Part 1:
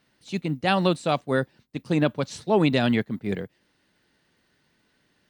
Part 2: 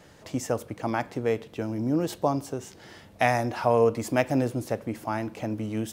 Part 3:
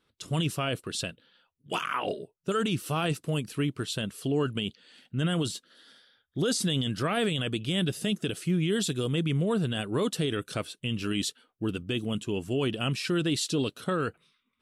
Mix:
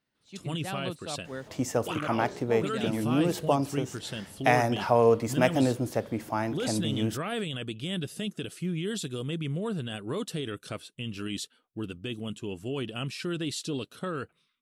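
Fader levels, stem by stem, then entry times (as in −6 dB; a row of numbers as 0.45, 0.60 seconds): −15.0, 0.0, −5.0 decibels; 0.00, 1.25, 0.15 seconds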